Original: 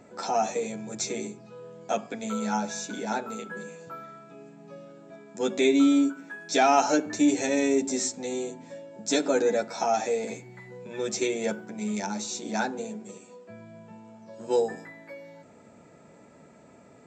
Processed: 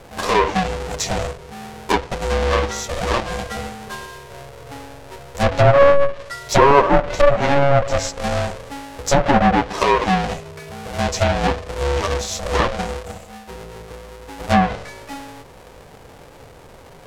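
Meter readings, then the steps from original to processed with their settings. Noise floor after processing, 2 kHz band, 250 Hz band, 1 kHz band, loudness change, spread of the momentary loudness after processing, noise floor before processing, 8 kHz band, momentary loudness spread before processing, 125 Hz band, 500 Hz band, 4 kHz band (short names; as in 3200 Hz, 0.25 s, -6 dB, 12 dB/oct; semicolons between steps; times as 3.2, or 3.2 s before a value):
-43 dBFS, +11.0 dB, +2.5 dB, +11.0 dB, +8.5 dB, 22 LU, -54 dBFS, +3.0 dB, 23 LU, +22.0 dB, +9.5 dB, +9.0 dB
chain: half-waves squared off; ring modulator 280 Hz; treble ducked by the level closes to 1600 Hz, closed at -18 dBFS; gain +9 dB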